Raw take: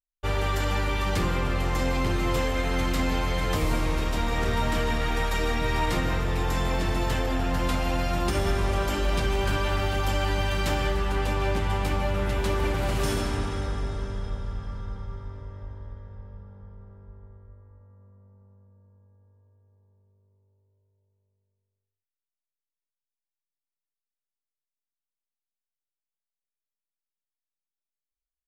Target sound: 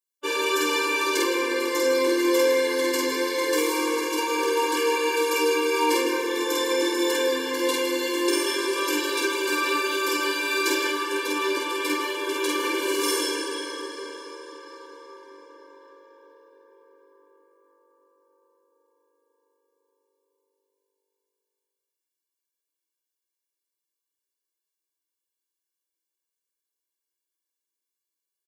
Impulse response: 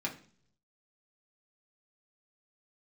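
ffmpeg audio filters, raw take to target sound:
-filter_complex "[0:a]bass=f=250:g=-1,treble=f=4k:g=7,bandreject=f=580:w=17,aecho=1:1:49.56|160.3:0.794|0.282,asplit=2[a][b];[1:a]atrim=start_sample=2205,asetrate=61740,aresample=44100,lowshelf=f=290:g=12[c];[b][c]afir=irnorm=-1:irlink=0,volume=-11dB[d];[a][d]amix=inputs=2:normalize=0,afftfilt=real='re*eq(mod(floor(b*sr/1024/300),2),1)':imag='im*eq(mod(floor(b*sr/1024/300),2),1)':win_size=1024:overlap=0.75,volume=3dB"

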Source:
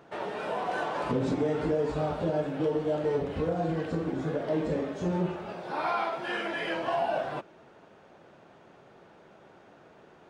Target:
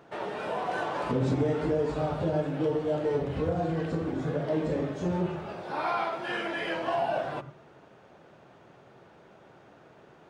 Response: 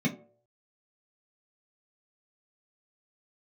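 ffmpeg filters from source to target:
-filter_complex "[0:a]asplit=2[a][b];[1:a]atrim=start_sample=2205,asetrate=23814,aresample=44100,adelay=81[c];[b][c]afir=irnorm=-1:irlink=0,volume=-27.5dB[d];[a][d]amix=inputs=2:normalize=0"

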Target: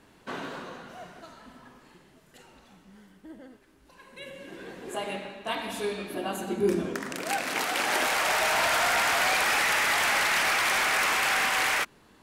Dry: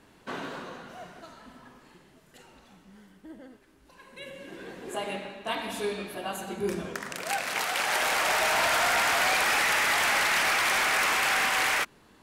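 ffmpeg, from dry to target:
-filter_complex "[0:a]asettb=1/sr,asplit=3[a][b][c];[a]atrim=end=6.104[d];[b]atrim=start=6.1:end=8.06,asetpts=PTS-STARTPTS,afade=t=in:d=0.004:c=qsin,afade=t=out:st=1.956:d=0.004:c=qsin,equalizer=f=290:w=1.5:g=10.5[e];[c]atrim=start=8.056[f];[d][e]acrossfade=d=0.004:c1=hsin:c2=qsin[g];[g][f]acrossfade=d=0.004:c1=qsin:c2=hsin"

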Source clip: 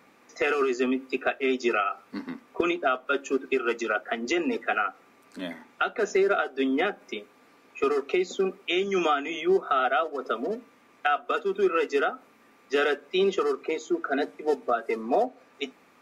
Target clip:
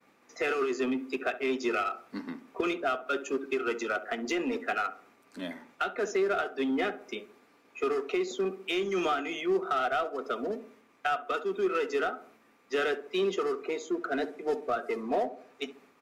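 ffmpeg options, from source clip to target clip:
-filter_complex "[0:a]agate=range=-33dB:threshold=-54dB:ratio=3:detection=peak,asplit=2[a][b];[b]adelay=68,lowpass=f=1.1k:p=1,volume=-13.5dB,asplit=2[c][d];[d]adelay=68,lowpass=f=1.1k:p=1,volume=0.49,asplit=2[e][f];[f]adelay=68,lowpass=f=1.1k:p=1,volume=0.49,asplit=2[g][h];[h]adelay=68,lowpass=f=1.1k:p=1,volume=0.49,asplit=2[i][j];[j]adelay=68,lowpass=f=1.1k:p=1,volume=0.49[k];[a][c][e][g][i][k]amix=inputs=6:normalize=0,asplit=2[l][m];[m]volume=27dB,asoftclip=hard,volume=-27dB,volume=-4dB[n];[l][n]amix=inputs=2:normalize=0,volume=-7dB"

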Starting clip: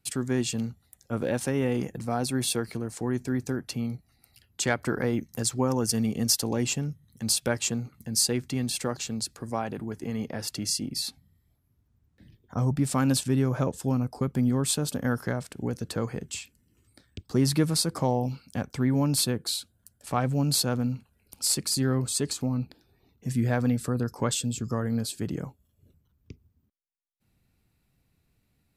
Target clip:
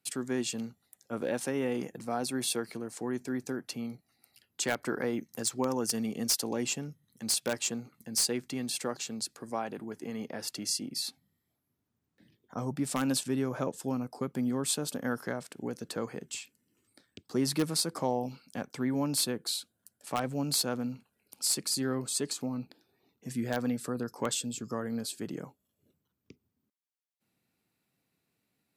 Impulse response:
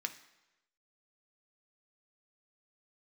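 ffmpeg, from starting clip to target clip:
-filter_complex "[0:a]highpass=220,asplit=2[a][b];[b]aeval=exprs='(mod(5.62*val(0)+1,2)-1)/5.62':c=same,volume=-5.5dB[c];[a][c]amix=inputs=2:normalize=0,volume=-7dB"

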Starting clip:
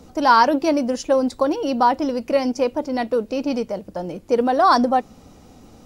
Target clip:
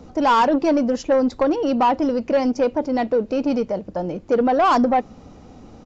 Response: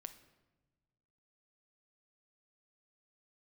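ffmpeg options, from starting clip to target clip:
-af "aresample=16000,asoftclip=type=tanh:threshold=-14.5dB,aresample=44100,highshelf=f=3.1k:g=-9,volume=3.5dB"

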